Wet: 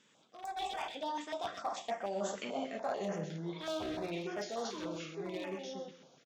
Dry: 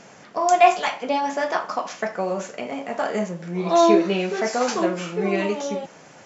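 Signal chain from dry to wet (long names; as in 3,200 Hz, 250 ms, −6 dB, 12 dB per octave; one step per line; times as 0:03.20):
wavefolder on the positive side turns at −16 dBFS
source passing by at 0:02.41, 25 m/s, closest 9.2 metres
parametric band 3,500 Hz +11 dB 0.41 octaves
mains-hum notches 60/120/180 Hz
on a send: repeating echo 129 ms, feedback 28%, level −11 dB
on the sum: dynamic equaliser 730 Hz, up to +6 dB, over −46 dBFS, Q 3.3
reversed playback
downward compressor 4 to 1, threshold −38 dBFS, peak gain reduction 14.5 dB
reversed playback
high-pass filter 120 Hz 6 dB per octave
automatic gain control gain up to 7 dB
notch on a step sequencer 6.8 Hz 710–3,900 Hz
level −4 dB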